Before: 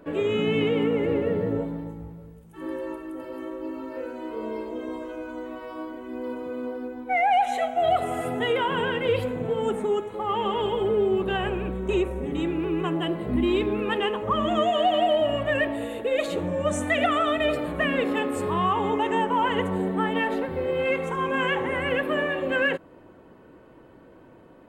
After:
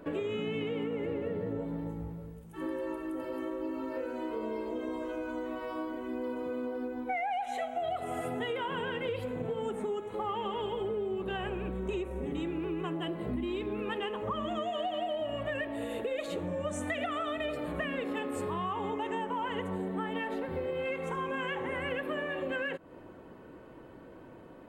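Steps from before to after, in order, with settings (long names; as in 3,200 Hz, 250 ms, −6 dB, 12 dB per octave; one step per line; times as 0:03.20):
downward compressor 6 to 1, threshold −32 dBFS, peak gain reduction 14 dB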